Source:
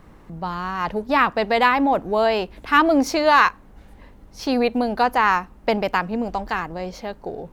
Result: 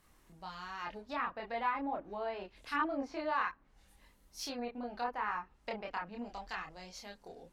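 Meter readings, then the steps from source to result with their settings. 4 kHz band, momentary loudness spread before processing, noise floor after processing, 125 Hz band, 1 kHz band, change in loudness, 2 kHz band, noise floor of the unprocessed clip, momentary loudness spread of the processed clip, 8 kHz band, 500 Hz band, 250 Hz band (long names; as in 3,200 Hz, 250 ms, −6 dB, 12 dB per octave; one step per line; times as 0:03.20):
−18.0 dB, 14 LU, −68 dBFS, below −20 dB, −18.0 dB, −18.5 dB, −18.5 dB, −48 dBFS, 14 LU, −13.5 dB, −20.0 dB, −20.0 dB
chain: treble cut that deepens with the level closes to 1,400 Hz, closed at −16.5 dBFS
multi-voice chorus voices 4, 0.43 Hz, delay 27 ms, depth 2.2 ms
first-order pre-emphasis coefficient 0.9
level +1 dB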